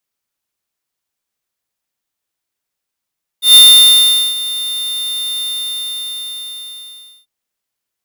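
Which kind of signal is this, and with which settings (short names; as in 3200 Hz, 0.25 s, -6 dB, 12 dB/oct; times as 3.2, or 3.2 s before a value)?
ADSR square 3610 Hz, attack 0.129 s, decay 0.793 s, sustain -17 dB, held 2.00 s, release 1.84 s -3 dBFS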